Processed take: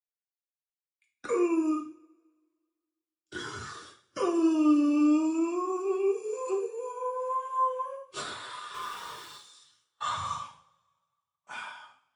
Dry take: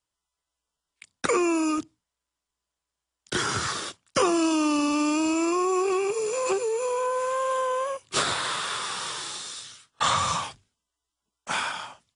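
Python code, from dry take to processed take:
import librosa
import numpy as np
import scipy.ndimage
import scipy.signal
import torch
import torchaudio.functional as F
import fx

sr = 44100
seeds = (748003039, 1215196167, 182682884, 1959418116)

y = fx.halfwave_hold(x, sr, at=(8.74, 9.36))
y = fx.rev_double_slope(y, sr, seeds[0], early_s=0.62, late_s=2.7, knee_db=-20, drr_db=-1.0)
y = fx.spectral_expand(y, sr, expansion=1.5)
y = y * librosa.db_to_amplitude(-7.5)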